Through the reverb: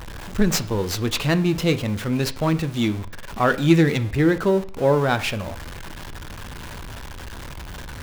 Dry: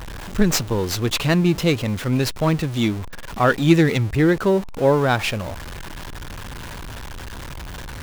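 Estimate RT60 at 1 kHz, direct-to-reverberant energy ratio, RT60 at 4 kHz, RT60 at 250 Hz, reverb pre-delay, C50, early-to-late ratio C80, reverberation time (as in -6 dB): 0.50 s, 11.5 dB, 0.50 s, 0.50 s, 5 ms, 17.5 dB, 20.5 dB, 0.55 s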